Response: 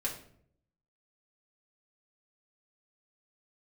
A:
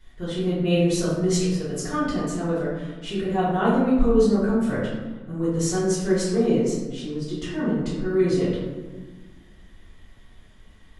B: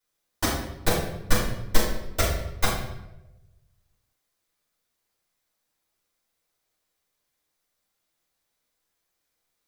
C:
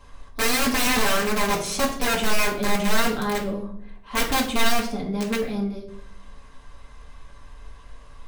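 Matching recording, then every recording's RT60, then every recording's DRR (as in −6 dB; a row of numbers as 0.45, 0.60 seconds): C; 1.4, 0.95, 0.60 seconds; −10.5, −10.0, −5.0 decibels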